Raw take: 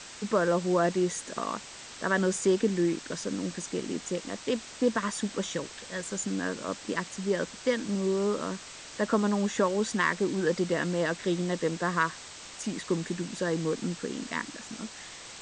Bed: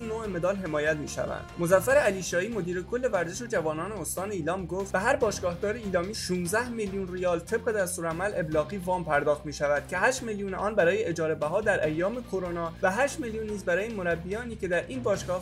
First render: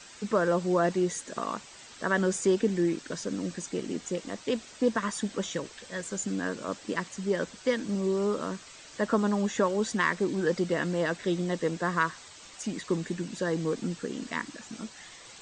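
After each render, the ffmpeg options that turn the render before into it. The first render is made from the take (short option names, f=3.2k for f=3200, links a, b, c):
-af "afftdn=nr=8:nf=-46"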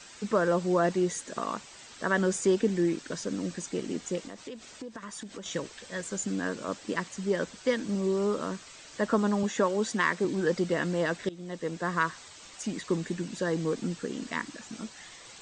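-filter_complex "[0:a]asettb=1/sr,asplit=3[a][b][c];[a]atrim=end=4.274[d];[b]atrim=start=4.27:end=5.46,asetpts=PTS-STARTPTS,afade=t=in:d=0.004:c=qsin,afade=t=out:st=1.186:d=0.004:c=qsin,acompressor=threshold=-37dB:ratio=8:attack=3.2:release=140:knee=1:detection=peak[e];[c]atrim=start=5.456[f];[d][e]acrossfade=d=0.004:c1=hsin:c2=qsin[g];[g][f]acrossfade=d=0.004:c1=qsin:c2=hsin,asettb=1/sr,asplit=3[h][i][j];[h]atrim=end=9.434[k];[i]atrim=start=9.43:end=10.25,asetpts=PTS-STARTPTS,afade=t=in:d=0.004:c=qsin,afade=t=out:st=0.816:d=0.004:c=qsin,highpass=150[l];[j]atrim=start=10.246[m];[k][l]acrossfade=d=0.004:c1=hsin:c2=qsin[n];[n][m]acrossfade=d=0.004:c1=qsin:c2=hsin,asplit=2[o][p];[o]atrim=end=11.29,asetpts=PTS-STARTPTS,afade=t=out:st=11.286:d=0.004:c=hsin:silence=0.0944061[q];[p]atrim=start=11.29,asetpts=PTS-STARTPTS,afade=t=in:d=0.99:c=qsin:silence=0.0944061[r];[q][r]concat=n=2:v=0:a=1"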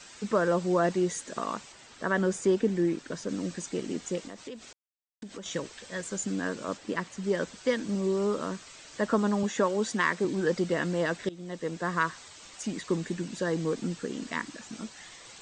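-filter_complex "[0:a]asettb=1/sr,asplit=3[a][b][c];[a]atrim=end=1.724[d];[b]atrim=start=1.72:end=3.29,asetpts=PTS-STARTPTS,afade=t=in:d=0.004:c=qsin,afade=t=out:st=1.566:d=0.004:c=qsin,highshelf=f=2.7k:g=-5.5[e];[c]atrim=start=3.286[f];[d][e]acrossfade=d=0.004:c1=hsin:c2=qsin[g];[g][f]acrossfade=d=0.004:c1=qsin:c2=hsin,asettb=1/sr,asplit=3[h][i][j];[h]atrim=end=6.774[k];[i]atrim=start=6.77:end=7.24,asetpts=PTS-STARTPTS,afade=t=in:d=0.004:c=qsin,afade=t=out:st=0.466:d=0.004:c=qsin,highshelf=f=4.2k:g=-6[l];[j]atrim=start=7.236[m];[k][l]acrossfade=d=0.004:c1=hsin:c2=qsin[n];[n][m]acrossfade=d=0.004:c1=qsin:c2=hsin,asplit=3[o][p][q];[o]atrim=end=4.73,asetpts=PTS-STARTPTS,afade=t=out:st=4.726:d=0.004:c=hsin[r];[p]atrim=start=4.73:end=5.22,asetpts=PTS-STARTPTS,volume=0[s];[q]atrim=start=5.22,asetpts=PTS-STARTPTS,afade=t=in:d=0.004:c=hsin[t];[r][s][t]concat=n=3:v=0:a=1"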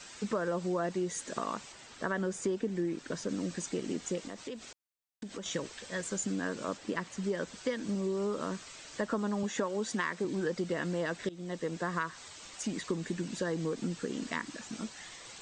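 -af "acompressor=threshold=-30dB:ratio=4"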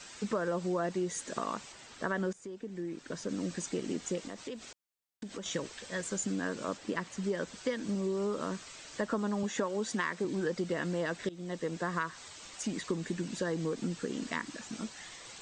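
-filter_complex "[0:a]asplit=2[a][b];[a]atrim=end=2.33,asetpts=PTS-STARTPTS,afade=t=out:st=2.326:d=0.004:c=hsin:silence=0.141254[c];[b]atrim=start=2.33,asetpts=PTS-STARTPTS,afade=t=in:d=1.14:silence=0.141254[d];[c][d]concat=n=2:v=0:a=1"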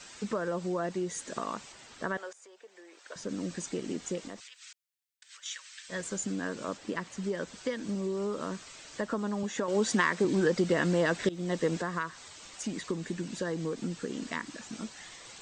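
-filter_complex "[0:a]asettb=1/sr,asplit=3[a][b][c];[a]atrim=end=2.174[d];[b]atrim=start=2.17:end=3.16,asetpts=PTS-STARTPTS,afade=t=in:d=0.004:c=qsin,afade=t=out:st=0.986:d=0.004:c=qsin,highpass=f=550:w=0.5412,highpass=f=550:w=1.3066[e];[c]atrim=start=3.156[f];[d][e]acrossfade=d=0.004:c1=hsin:c2=qsin[g];[g][f]acrossfade=d=0.004:c1=qsin:c2=hsin,asplit=3[h][i][j];[h]afade=t=out:st=4.39:d=0.02[k];[i]highpass=f=1.5k:w=0.5412,highpass=f=1.5k:w=1.3066,afade=t=in:st=4.39:d=0.02,afade=t=out:st=5.88:d=0.02[l];[j]afade=t=in:st=5.88:d=0.02[m];[k][l][m]amix=inputs=3:normalize=0,asettb=1/sr,asplit=3[n][o][p];[n]atrim=end=9.684[q];[o]atrim=start=9.68:end=11.82,asetpts=PTS-STARTPTS,afade=t=in:d=0.004:c=qsin,afade=t=out:st=2.136:d=0.004:c=qsin,acontrast=73[r];[p]atrim=start=11.816[s];[q][r]acrossfade=d=0.004:c1=hsin:c2=qsin[t];[t][s]acrossfade=d=0.004:c1=qsin:c2=hsin"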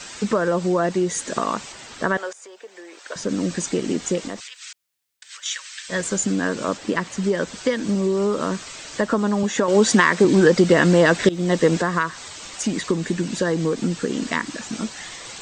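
-af "volume=12dB,alimiter=limit=-3dB:level=0:latency=1"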